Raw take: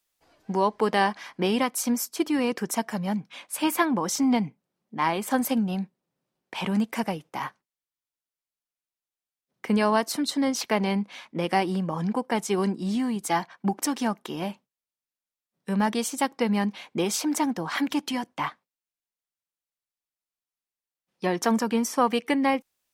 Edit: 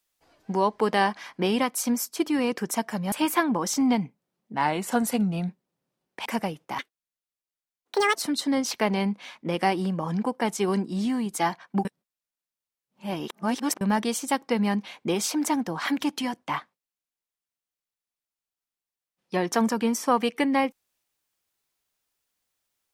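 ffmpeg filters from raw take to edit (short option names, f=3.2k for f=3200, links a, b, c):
-filter_complex "[0:a]asplit=9[a][b][c][d][e][f][g][h][i];[a]atrim=end=3.122[j];[b]atrim=start=3.538:end=4.964[k];[c]atrim=start=4.96:end=5.83,asetpts=PTS-STARTPTS,asetrate=40572,aresample=44100,atrim=end_sample=41703,asetpts=PTS-STARTPTS[l];[d]atrim=start=5.826:end=6.602[m];[e]atrim=start=6.898:end=7.434[n];[f]atrim=start=7.43:end=10.05,asetpts=PTS-STARTPTS,asetrate=84672,aresample=44100,atrim=end_sample=60178,asetpts=PTS-STARTPTS[o];[g]atrim=start=10.046:end=13.752[p];[h]atrim=start=13.748:end=15.712,asetpts=PTS-STARTPTS,areverse[q];[i]atrim=start=15.708[r];[j][k]acrossfade=d=0.004:c1=hsin:c2=hsin[s];[s][l]acrossfade=d=0.004:c1=hsin:c2=hsin[t];[t][m]acrossfade=d=0.004:c1=hsin:c2=hsin[u];[u][n]acrossfade=d=0.004:c1=hsin:c2=hsin[v];[v][o]acrossfade=d=0.004:c1=hsin:c2=hsin[w];[w][p]acrossfade=d=0.004:c1=hsin:c2=hsin[x];[x][q]acrossfade=d=0.004:c1=hsin:c2=hsin[y];[y][r]acrossfade=d=0.004:c1=hsin:c2=hsin"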